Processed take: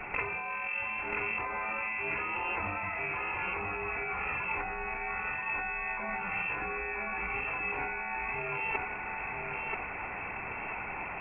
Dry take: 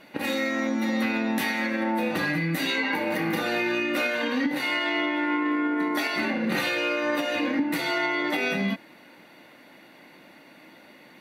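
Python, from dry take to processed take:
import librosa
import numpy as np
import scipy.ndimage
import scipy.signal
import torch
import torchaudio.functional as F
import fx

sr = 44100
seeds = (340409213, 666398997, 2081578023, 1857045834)

p1 = fx.highpass(x, sr, hz=420.0, slope=6)
p2 = fx.freq_invert(p1, sr, carrier_hz=2900)
p3 = fx.over_compress(p2, sr, threshold_db=-39.0, ratio=-1.0)
p4 = p3 + fx.echo_feedback(p3, sr, ms=984, feedback_pct=37, wet_db=-3.5, dry=0)
y = F.gain(torch.from_numpy(p4), 2.5).numpy()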